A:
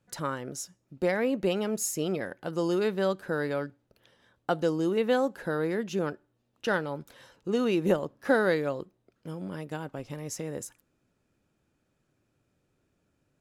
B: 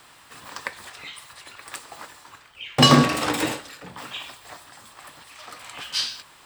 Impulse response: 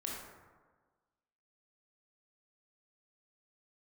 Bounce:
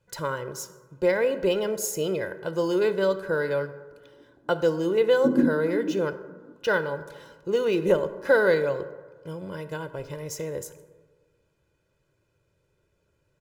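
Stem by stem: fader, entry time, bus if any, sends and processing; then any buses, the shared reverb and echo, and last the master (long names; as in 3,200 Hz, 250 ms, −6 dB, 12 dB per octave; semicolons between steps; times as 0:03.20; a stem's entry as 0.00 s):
−0.5 dB, 0.00 s, send −9 dB, comb filter 2 ms, depth 73%
+1.5 dB, 2.45 s, no send, Chebyshev high-pass filter 170 Hz, order 5; transistor ladder low-pass 360 Hz, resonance 55%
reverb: on, RT60 1.4 s, pre-delay 18 ms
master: linearly interpolated sample-rate reduction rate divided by 2×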